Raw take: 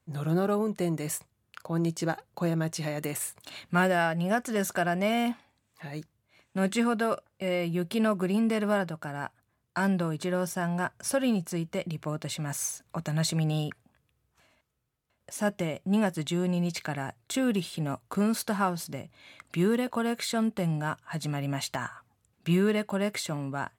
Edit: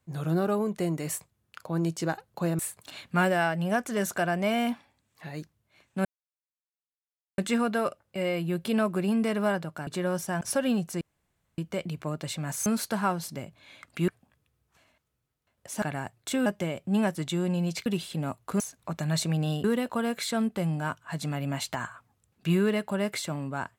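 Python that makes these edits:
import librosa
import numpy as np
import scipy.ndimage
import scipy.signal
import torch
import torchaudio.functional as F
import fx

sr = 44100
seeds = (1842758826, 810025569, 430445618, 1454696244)

y = fx.edit(x, sr, fx.cut(start_s=2.59, length_s=0.59),
    fx.insert_silence(at_s=6.64, length_s=1.33),
    fx.cut(start_s=9.13, length_s=1.02),
    fx.cut(start_s=10.69, length_s=0.3),
    fx.insert_room_tone(at_s=11.59, length_s=0.57),
    fx.swap(start_s=12.67, length_s=1.04, other_s=18.23, other_length_s=1.42),
    fx.move(start_s=16.85, length_s=0.64, to_s=15.45), tone=tone)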